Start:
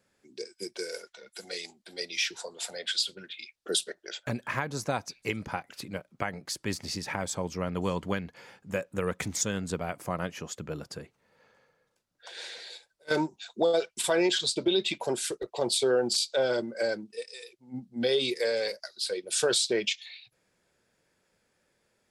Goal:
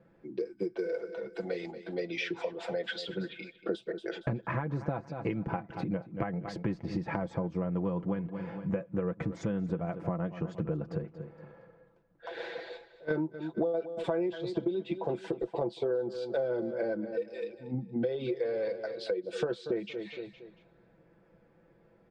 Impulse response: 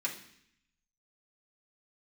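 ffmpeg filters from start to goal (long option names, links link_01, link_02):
-af "lowpass=2800,tiltshelf=frequency=1400:gain=10,aecho=1:1:6:0.59,aecho=1:1:232|464|696:0.158|0.0523|0.0173,acompressor=threshold=-33dB:ratio=6,volume=3dB"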